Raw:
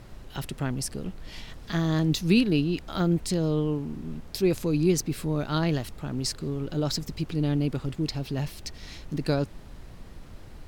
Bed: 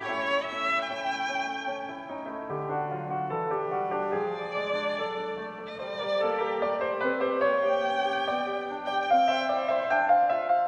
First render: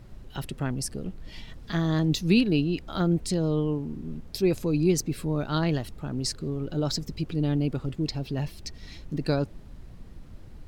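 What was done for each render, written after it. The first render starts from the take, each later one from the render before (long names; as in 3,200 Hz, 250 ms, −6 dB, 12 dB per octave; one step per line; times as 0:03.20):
broadband denoise 7 dB, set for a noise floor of −45 dBFS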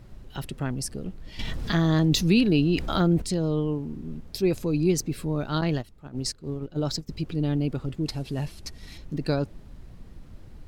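0:01.39–0:03.22: envelope flattener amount 50%
0:05.61–0:07.09: noise gate −31 dBFS, range −12 dB
0:08.06–0:08.98: variable-slope delta modulation 64 kbit/s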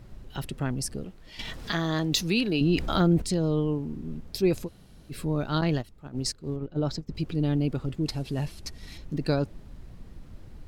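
0:01.04–0:02.61: low-shelf EQ 310 Hz −10.5 dB
0:04.66–0:05.12: fill with room tone, crossfade 0.06 s
0:06.56–0:07.15: low-pass filter 2,300 Hz 6 dB per octave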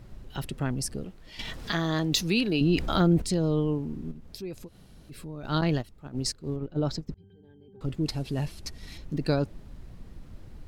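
0:04.11–0:05.44: downward compressor 2 to 1, threshold −45 dBFS
0:07.14–0:07.81: resonances in every octave G, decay 0.42 s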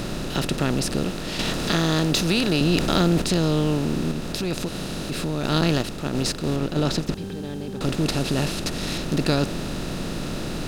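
compressor on every frequency bin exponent 0.4
reversed playback
upward compression, threshold −26 dBFS
reversed playback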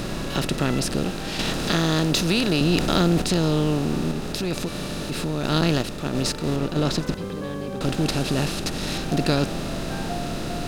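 mix in bed −12 dB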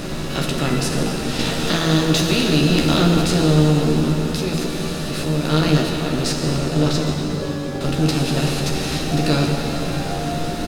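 double-tracking delay 13 ms −5 dB
dense smooth reverb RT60 4 s, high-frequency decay 0.9×, DRR 0.5 dB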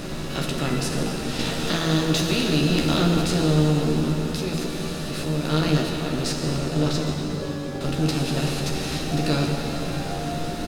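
level −4.5 dB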